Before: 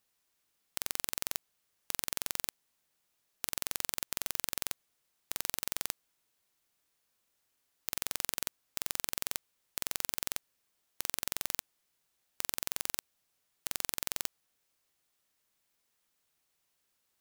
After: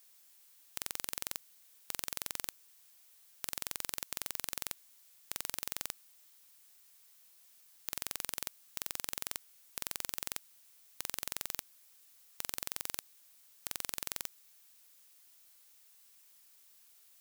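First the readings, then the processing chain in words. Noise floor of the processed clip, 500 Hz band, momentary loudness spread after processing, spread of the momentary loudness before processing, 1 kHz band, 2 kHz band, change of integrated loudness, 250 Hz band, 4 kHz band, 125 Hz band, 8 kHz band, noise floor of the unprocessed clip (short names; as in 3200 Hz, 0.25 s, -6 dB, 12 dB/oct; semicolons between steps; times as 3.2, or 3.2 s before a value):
-63 dBFS, -3.5 dB, 21 LU, 7 LU, -3.5 dB, -3.5 dB, -3.5 dB, -3.5 dB, -3.5 dB, -3.5 dB, -3.5 dB, -79 dBFS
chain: added noise blue -59 dBFS; gain -3.5 dB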